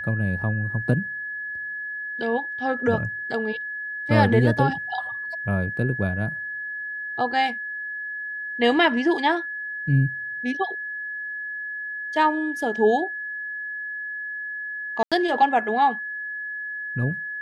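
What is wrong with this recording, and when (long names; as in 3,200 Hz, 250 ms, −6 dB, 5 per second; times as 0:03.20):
whistle 1,700 Hz −29 dBFS
0:15.03–0:15.12: drop-out 86 ms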